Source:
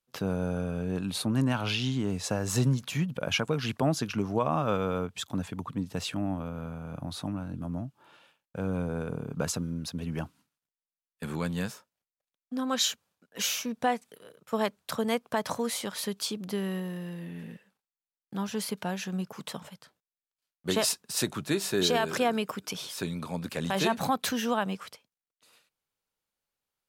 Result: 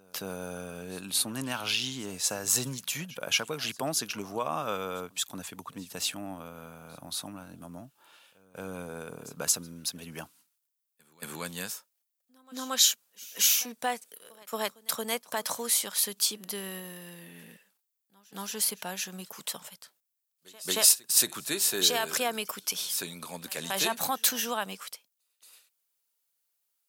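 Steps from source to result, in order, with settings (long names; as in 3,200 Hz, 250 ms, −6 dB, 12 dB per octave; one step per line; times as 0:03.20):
RIAA equalisation recording
echo ahead of the sound 227 ms −23 dB
level −2.5 dB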